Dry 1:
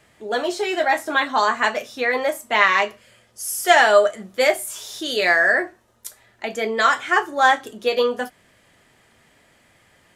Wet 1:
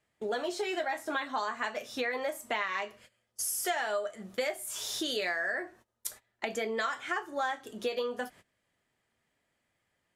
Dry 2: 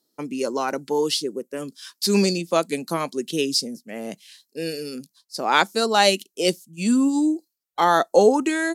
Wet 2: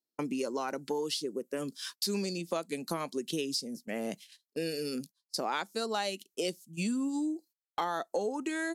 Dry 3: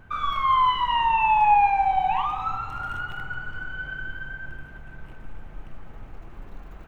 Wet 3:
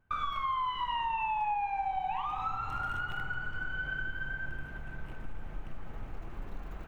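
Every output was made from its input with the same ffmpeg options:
-af "agate=range=-22dB:threshold=-44dB:ratio=16:detection=peak,acompressor=threshold=-31dB:ratio=6"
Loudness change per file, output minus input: −14.5, −13.0, −11.5 LU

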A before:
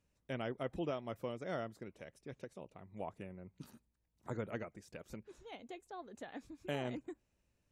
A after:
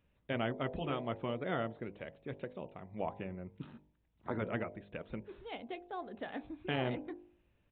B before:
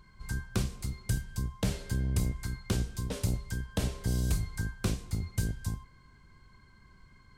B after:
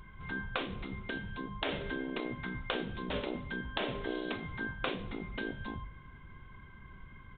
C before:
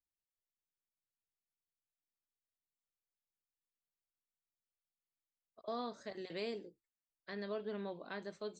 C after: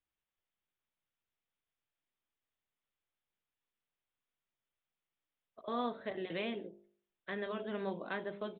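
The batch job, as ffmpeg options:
-af "aresample=8000,aresample=44100,bandreject=frequency=50.35:width_type=h:width=4,bandreject=frequency=100.7:width_type=h:width=4,bandreject=frequency=151.05:width_type=h:width=4,bandreject=frequency=201.4:width_type=h:width=4,bandreject=frequency=251.75:width_type=h:width=4,bandreject=frequency=302.1:width_type=h:width=4,bandreject=frequency=352.45:width_type=h:width=4,bandreject=frequency=402.8:width_type=h:width=4,bandreject=frequency=453.15:width_type=h:width=4,bandreject=frequency=503.5:width_type=h:width=4,bandreject=frequency=553.85:width_type=h:width=4,bandreject=frequency=604.2:width_type=h:width=4,bandreject=frequency=654.55:width_type=h:width=4,bandreject=frequency=704.9:width_type=h:width=4,bandreject=frequency=755.25:width_type=h:width=4,bandreject=frequency=805.6:width_type=h:width=4,bandreject=frequency=855.95:width_type=h:width=4,bandreject=frequency=906.3:width_type=h:width=4,bandreject=frequency=956.65:width_type=h:width=4,bandreject=frequency=1007:width_type=h:width=4,afftfilt=real='re*lt(hypot(re,im),0.0794)':imag='im*lt(hypot(re,im),0.0794)':win_size=1024:overlap=0.75,volume=6.5dB"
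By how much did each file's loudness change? +4.5, −4.0, +4.0 LU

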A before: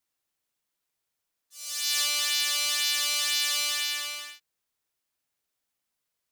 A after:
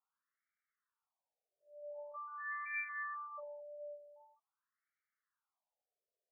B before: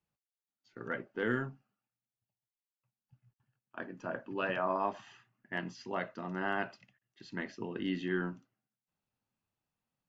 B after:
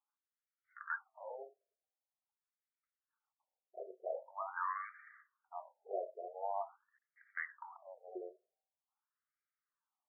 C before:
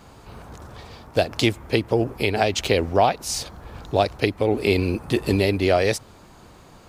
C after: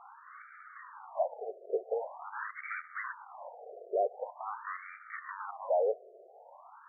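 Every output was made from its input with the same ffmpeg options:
-af "aeval=exprs='(tanh(20*val(0)+0.4)-tanh(0.4))/20':channel_layout=same,afftfilt=real='re*between(b*sr/1024,510*pow(1700/510,0.5+0.5*sin(2*PI*0.45*pts/sr))/1.41,510*pow(1700/510,0.5+0.5*sin(2*PI*0.45*pts/sr))*1.41)':imag='im*between(b*sr/1024,510*pow(1700/510,0.5+0.5*sin(2*PI*0.45*pts/sr))/1.41,510*pow(1700/510,0.5+0.5*sin(2*PI*0.45*pts/sr))*1.41)':win_size=1024:overlap=0.75,volume=2.5dB"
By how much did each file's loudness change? −19.0, −7.5, −14.5 LU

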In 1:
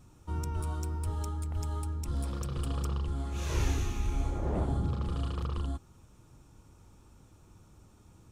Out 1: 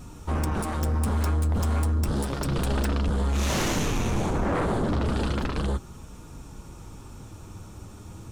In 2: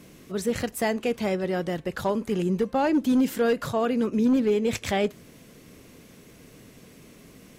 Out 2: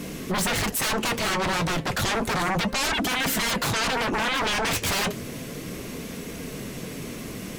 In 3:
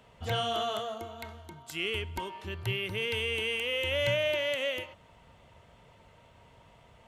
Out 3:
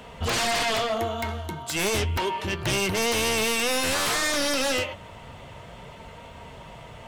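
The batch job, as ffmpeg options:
-af "aeval=exprs='0.188*sin(PI/2*7.94*val(0)/0.188)':channel_layout=same,flanger=delay=4.2:depth=6.2:regen=-56:speed=0.32:shape=sinusoidal,volume=-3dB"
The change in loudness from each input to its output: +7.5, 0.0, +7.0 LU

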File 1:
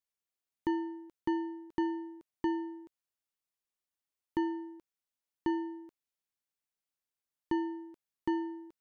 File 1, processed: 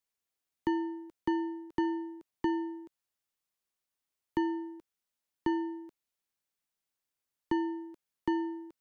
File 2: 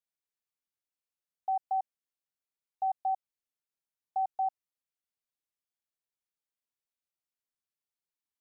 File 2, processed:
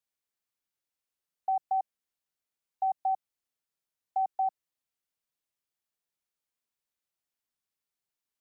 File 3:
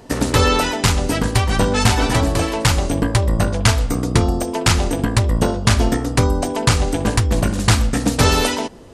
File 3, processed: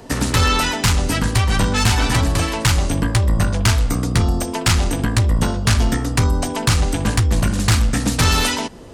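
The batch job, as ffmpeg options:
-filter_complex "[0:a]acrossover=split=260|860[link_01][link_02][link_03];[link_02]acompressor=threshold=-33dB:ratio=6[link_04];[link_01][link_04][link_03]amix=inputs=3:normalize=0,asoftclip=type=tanh:threshold=-11.5dB,volume=3dB"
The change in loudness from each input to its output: +1.5, +2.0, −0.5 LU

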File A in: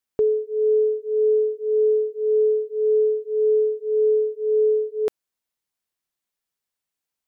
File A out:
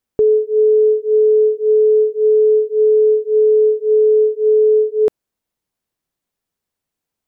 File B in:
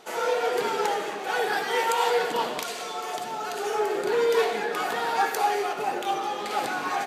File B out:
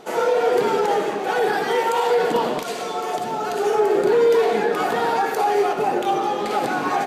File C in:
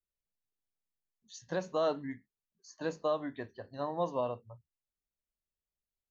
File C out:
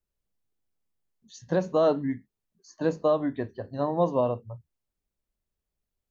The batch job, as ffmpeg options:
-af "alimiter=limit=-18dB:level=0:latency=1:release=56,tiltshelf=frequency=790:gain=5.5,volume=7dB"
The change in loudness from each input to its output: +7.5, +6.0, +8.5 LU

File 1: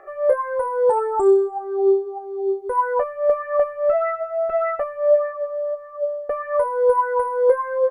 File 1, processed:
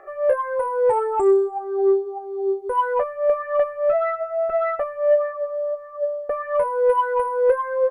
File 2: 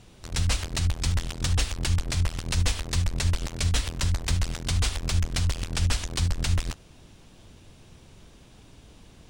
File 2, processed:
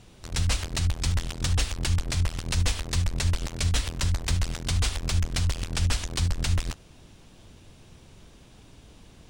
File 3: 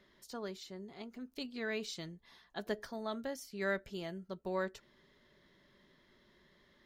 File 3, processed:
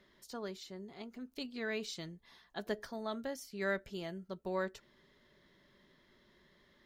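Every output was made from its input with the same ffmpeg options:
-af "asoftclip=type=tanh:threshold=-8.5dB"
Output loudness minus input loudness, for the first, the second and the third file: −1.0, 0.0, 0.0 LU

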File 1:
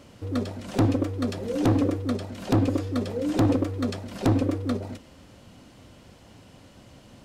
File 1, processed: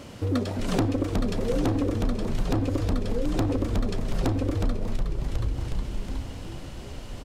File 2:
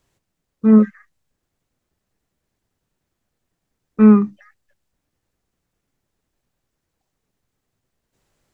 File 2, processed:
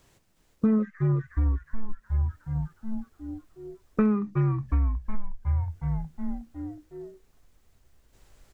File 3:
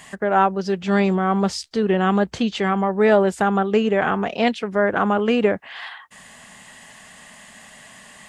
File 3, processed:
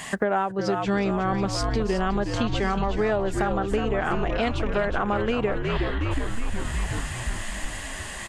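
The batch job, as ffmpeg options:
-filter_complex "[0:a]asplit=9[link_01][link_02][link_03][link_04][link_05][link_06][link_07][link_08][link_09];[link_02]adelay=365,afreqshift=-73,volume=-7.5dB[link_10];[link_03]adelay=730,afreqshift=-146,volume=-11.9dB[link_11];[link_04]adelay=1095,afreqshift=-219,volume=-16.4dB[link_12];[link_05]adelay=1460,afreqshift=-292,volume=-20.8dB[link_13];[link_06]adelay=1825,afreqshift=-365,volume=-25.2dB[link_14];[link_07]adelay=2190,afreqshift=-438,volume=-29.7dB[link_15];[link_08]adelay=2555,afreqshift=-511,volume=-34.1dB[link_16];[link_09]adelay=2920,afreqshift=-584,volume=-38.6dB[link_17];[link_01][link_10][link_11][link_12][link_13][link_14][link_15][link_16][link_17]amix=inputs=9:normalize=0,asubboost=boost=4.5:cutoff=70,acompressor=threshold=-29dB:ratio=8,volume=7.5dB"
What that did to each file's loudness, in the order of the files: −2.0, −15.0, −6.5 LU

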